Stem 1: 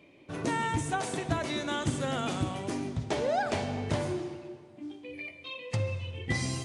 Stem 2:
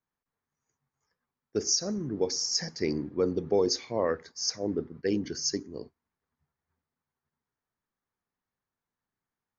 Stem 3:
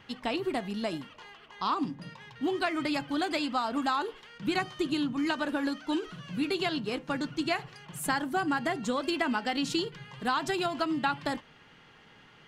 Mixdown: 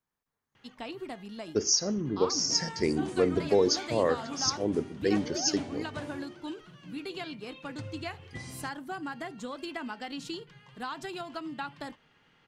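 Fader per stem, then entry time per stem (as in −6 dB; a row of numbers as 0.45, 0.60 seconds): −11.5, +1.5, −8.5 decibels; 2.05, 0.00, 0.55 seconds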